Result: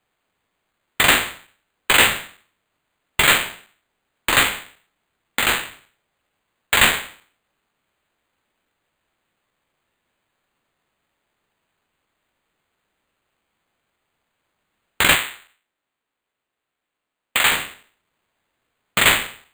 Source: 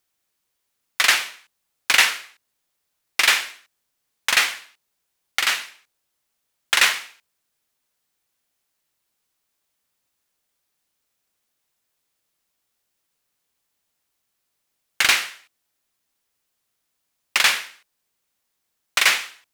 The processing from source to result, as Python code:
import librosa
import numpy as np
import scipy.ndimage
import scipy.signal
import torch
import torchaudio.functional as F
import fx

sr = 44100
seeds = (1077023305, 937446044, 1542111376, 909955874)

y = fx.spec_trails(x, sr, decay_s=0.46)
y = fx.bandpass_edges(y, sr, low_hz=210.0, high_hz=3500.0, at=(15.15, 17.52))
y = np.repeat(y[::8], 8)[:len(y)]